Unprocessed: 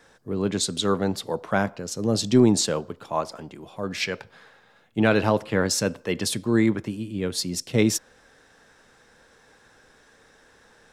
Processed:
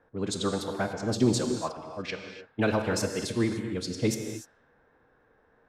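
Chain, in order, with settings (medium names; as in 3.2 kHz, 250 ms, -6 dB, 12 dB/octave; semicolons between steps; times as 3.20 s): time stretch by phase-locked vocoder 0.52×; level-controlled noise filter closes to 1.3 kHz, open at -21 dBFS; gated-style reverb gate 320 ms flat, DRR 5 dB; trim -5 dB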